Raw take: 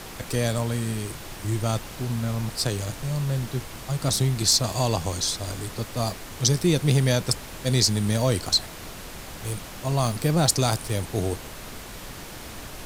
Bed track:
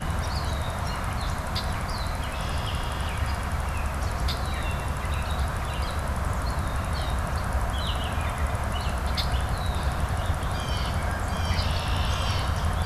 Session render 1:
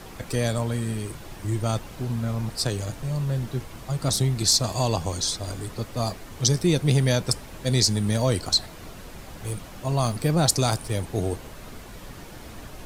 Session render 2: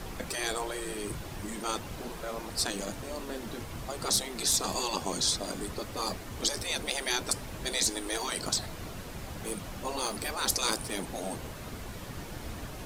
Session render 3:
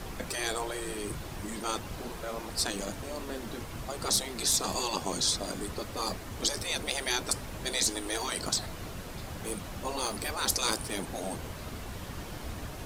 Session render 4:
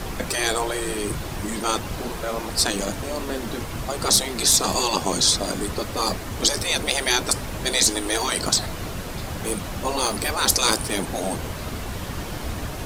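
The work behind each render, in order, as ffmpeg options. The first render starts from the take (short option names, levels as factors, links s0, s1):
-af "afftdn=nr=7:nf=-40"
-af "lowshelf=f=63:g=8.5,afftfilt=real='re*lt(hypot(re,im),0.178)':imag='im*lt(hypot(re,im),0.178)':win_size=1024:overlap=0.75"
-filter_complex "[1:a]volume=0.0708[s0];[0:a][s0]amix=inputs=2:normalize=0"
-af "volume=2.99,alimiter=limit=0.708:level=0:latency=1"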